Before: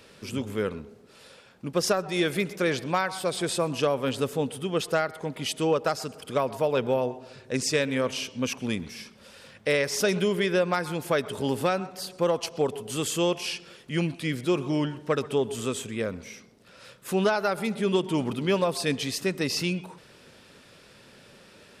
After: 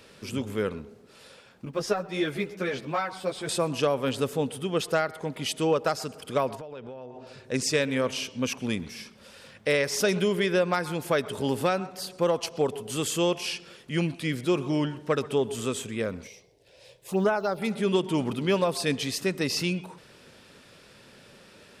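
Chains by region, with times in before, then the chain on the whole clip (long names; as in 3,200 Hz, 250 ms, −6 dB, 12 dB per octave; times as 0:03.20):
0:01.65–0:03.49: one scale factor per block 7 bits + high-shelf EQ 5,400 Hz −9.5 dB + string-ensemble chorus
0:06.55–0:07.27: downward compressor 16 to 1, threshold −36 dBFS + high-frequency loss of the air 72 metres
0:16.27–0:17.62: one scale factor per block 7 bits + high-shelf EQ 5,300 Hz −6 dB + phaser swept by the level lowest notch 200 Hz, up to 4,500 Hz, full sweep at −19 dBFS
whole clip: no processing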